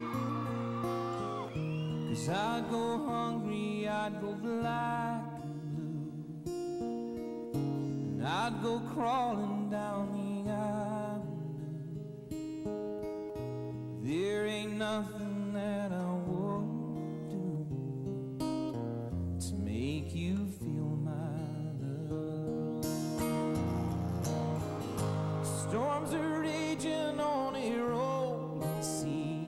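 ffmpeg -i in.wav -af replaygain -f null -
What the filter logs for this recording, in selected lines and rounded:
track_gain = +17.6 dB
track_peak = 0.044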